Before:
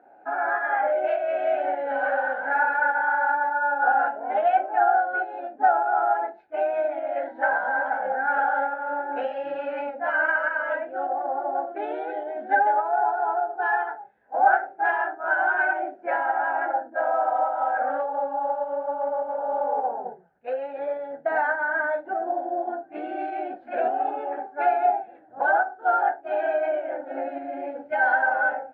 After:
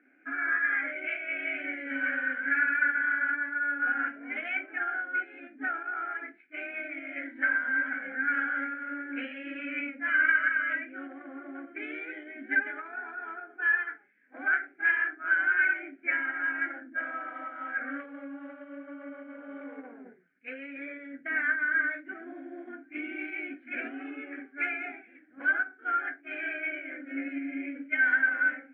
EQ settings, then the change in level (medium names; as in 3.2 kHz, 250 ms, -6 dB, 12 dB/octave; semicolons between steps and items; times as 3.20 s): vowel filter i; high-order bell 1.6 kHz +15.5 dB; +5.5 dB